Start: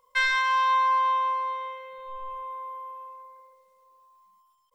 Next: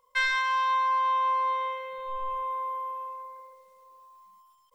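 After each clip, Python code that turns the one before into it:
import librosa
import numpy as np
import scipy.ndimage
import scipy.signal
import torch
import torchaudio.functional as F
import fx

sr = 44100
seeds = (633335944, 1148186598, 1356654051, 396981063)

y = fx.rider(x, sr, range_db=5, speed_s=0.5)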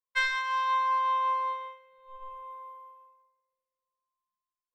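y = fx.upward_expand(x, sr, threshold_db=-47.0, expansion=2.5)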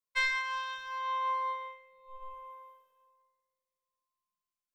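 y = fx.comb_fb(x, sr, f0_hz=190.0, decay_s=0.76, harmonics='all', damping=0.0, mix_pct=50)
y = fx.notch_cascade(y, sr, direction='rising', hz=0.48)
y = y * librosa.db_to_amplitude(5.0)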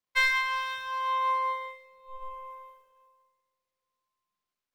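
y = scipy.signal.medfilt(x, 5)
y = fx.echo_feedback(y, sr, ms=182, feedback_pct=41, wet_db=-16.0)
y = y * librosa.db_to_amplitude(5.5)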